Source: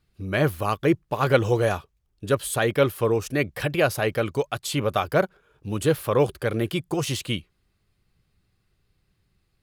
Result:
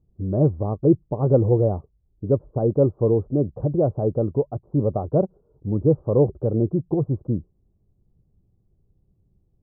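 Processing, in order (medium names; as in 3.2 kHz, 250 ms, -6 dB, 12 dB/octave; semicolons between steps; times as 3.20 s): Gaussian low-pass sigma 14 samples; trim +6 dB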